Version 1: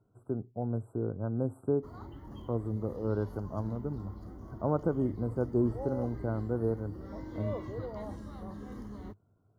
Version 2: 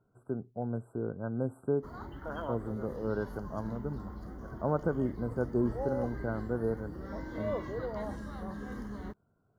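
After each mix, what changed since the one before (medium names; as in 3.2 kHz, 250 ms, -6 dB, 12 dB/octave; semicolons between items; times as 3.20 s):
second voice: unmuted; background +3.5 dB; master: add graphic EQ with 31 bands 100 Hz -10 dB, 315 Hz -4 dB, 1.6 kHz +9 dB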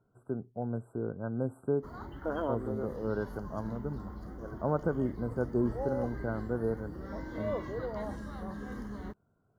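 second voice: add peaking EQ 330 Hz +12.5 dB 1.6 oct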